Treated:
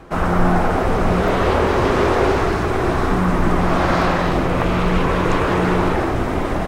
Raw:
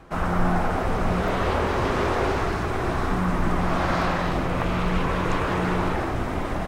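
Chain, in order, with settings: bell 390 Hz +3.5 dB 1.1 oct; gain +5.5 dB

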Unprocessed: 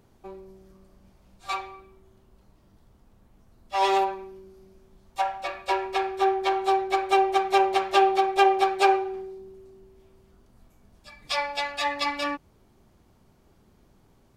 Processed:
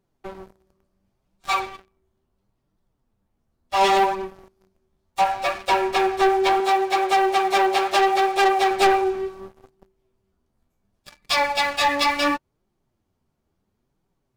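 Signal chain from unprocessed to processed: sample leveller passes 1; flange 0.71 Hz, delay 5 ms, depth 9.2 ms, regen +35%; sample leveller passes 3; 6.6–8.71 low shelf 210 Hz -12 dB; gain -2.5 dB

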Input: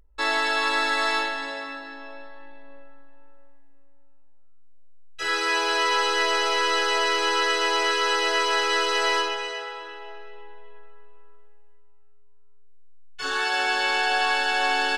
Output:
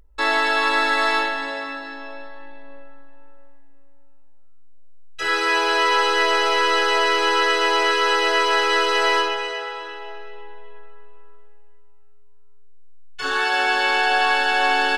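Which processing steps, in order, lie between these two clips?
dynamic EQ 6800 Hz, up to -6 dB, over -44 dBFS, Q 0.72; gain +5 dB

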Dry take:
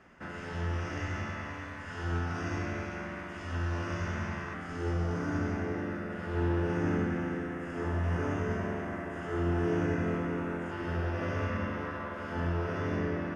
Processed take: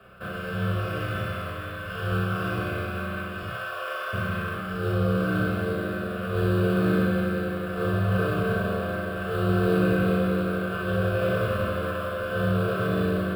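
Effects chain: 3.49–4.13 HPF 540 Hz 24 dB/oct; in parallel at -9 dB: sample-rate reducer 4200 Hz, jitter 20%; on the sum: fixed phaser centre 1300 Hz, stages 8; frequency shift +15 Hz; flutter echo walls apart 5.6 m, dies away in 0.34 s; on a send at -4 dB: reverb RT60 0.80 s, pre-delay 3 ms; on the sum: gain +7 dB

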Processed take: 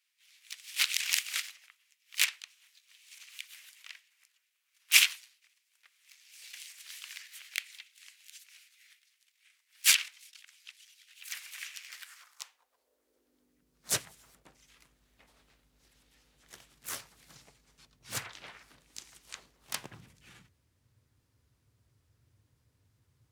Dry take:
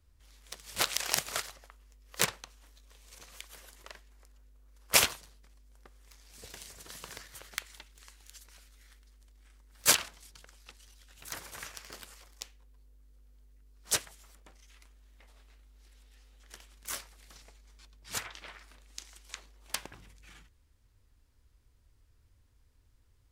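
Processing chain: high-pass sweep 2300 Hz -> 120 Hz, 11.85–13.95; harmoniser +3 st -5 dB; gain -2 dB

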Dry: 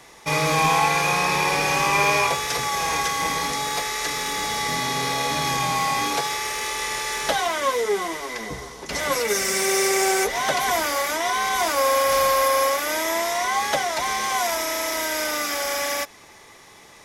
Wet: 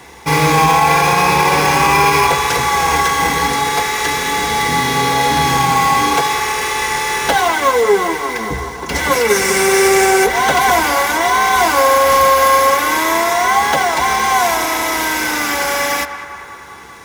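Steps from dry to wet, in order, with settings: bell 68 Hz +12.5 dB 0.39 oct; in parallel at -5 dB: sample-rate reducer 7500 Hz; on the sum: notch comb 610 Hz; narrowing echo 0.196 s, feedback 74%, band-pass 1200 Hz, level -10 dB; maximiser +8 dB; gain -1 dB

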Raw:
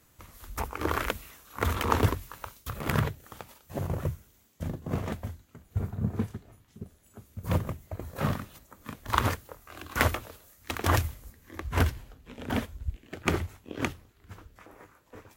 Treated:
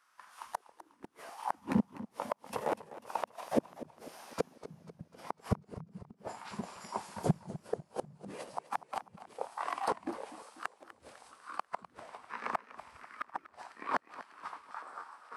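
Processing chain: Doppler pass-by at 5.53, 18 m/s, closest 22 m; tilt +4 dB/oct; AGC gain up to 16 dB; auto-wah 210–1700 Hz, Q 3.1, down, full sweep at -20.5 dBFS; on a send: thin delay 87 ms, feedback 69%, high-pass 2900 Hz, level -15 dB; on the sum: flipped gate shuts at -32 dBFS, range -41 dB; bell 190 Hz +8 dB 1.1 oct; formant shift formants -5 st; warbling echo 0.248 s, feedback 53%, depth 128 cents, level -15.5 dB; gain +14 dB

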